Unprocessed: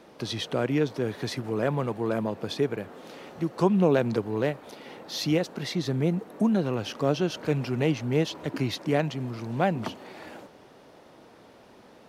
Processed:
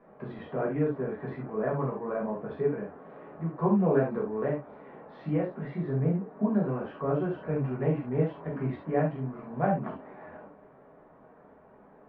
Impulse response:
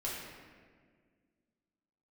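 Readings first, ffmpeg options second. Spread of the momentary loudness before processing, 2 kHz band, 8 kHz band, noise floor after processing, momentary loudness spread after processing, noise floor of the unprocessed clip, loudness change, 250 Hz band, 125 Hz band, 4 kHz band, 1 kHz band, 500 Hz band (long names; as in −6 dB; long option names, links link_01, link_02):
14 LU, −6.5 dB, below −35 dB, −56 dBFS, 16 LU, −53 dBFS, −2.5 dB, −3.0 dB, −1.5 dB, below −25 dB, −1.5 dB, −2.5 dB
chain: -filter_complex "[0:a]lowpass=frequency=1700:width=0.5412,lowpass=frequency=1700:width=1.3066[link_01];[1:a]atrim=start_sample=2205,afade=type=out:start_time=0.2:duration=0.01,atrim=end_sample=9261,asetrate=74970,aresample=44100[link_02];[link_01][link_02]afir=irnorm=-1:irlink=0"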